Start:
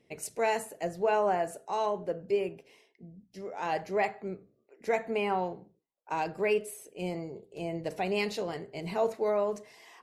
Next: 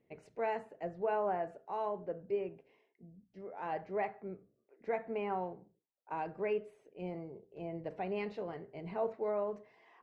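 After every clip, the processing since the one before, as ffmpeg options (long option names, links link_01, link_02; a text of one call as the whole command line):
ffmpeg -i in.wav -af "lowpass=1900,volume=-6.5dB" out.wav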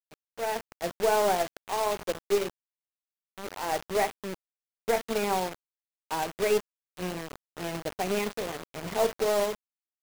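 ffmpeg -i in.wav -af "acrusher=bits=6:mix=0:aa=0.000001,dynaudnorm=framelen=190:gausssize=5:maxgain=9dB,aeval=exprs='0.188*(cos(1*acos(clip(val(0)/0.188,-1,1)))-cos(1*PI/2))+0.0106*(cos(4*acos(clip(val(0)/0.188,-1,1)))-cos(4*PI/2))+0.0133*(cos(7*acos(clip(val(0)/0.188,-1,1)))-cos(7*PI/2))':channel_layout=same" out.wav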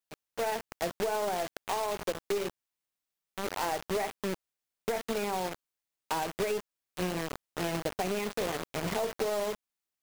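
ffmpeg -i in.wav -af "alimiter=limit=-21.5dB:level=0:latency=1:release=14,acompressor=threshold=-34dB:ratio=6,volume=6dB" out.wav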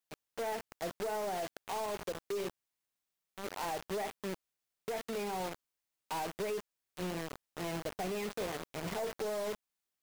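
ffmpeg -i in.wav -af "asoftclip=type=tanh:threshold=-32dB" out.wav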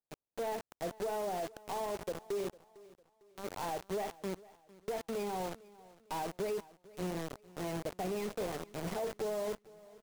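ffmpeg -i in.wav -filter_complex "[0:a]acrossover=split=1000[link_01][link_02];[link_02]acrusher=bits=6:dc=4:mix=0:aa=0.000001[link_03];[link_01][link_03]amix=inputs=2:normalize=0,aecho=1:1:453|906|1359:0.0891|0.0348|0.0136,volume=1dB" out.wav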